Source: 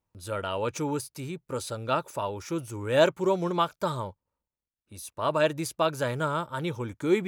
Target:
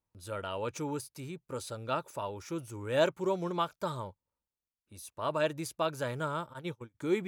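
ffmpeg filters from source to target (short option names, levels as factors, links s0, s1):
-filter_complex "[0:a]asplit=3[s0][s1][s2];[s0]afade=t=out:st=6.52:d=0.02[s3];[s1]agate=range=0.0282:threshold=0.0316:ratio=16:detection=peak,afade=t=in:st=6.52:d=0.02,afade=t=out:st=6.94:d=0.02[s4];[s2]afade=t=in:st=6.94:d=0.02[s5];[s3][s4][s5]amix=inputs=3:normalize=0,volume=0.501"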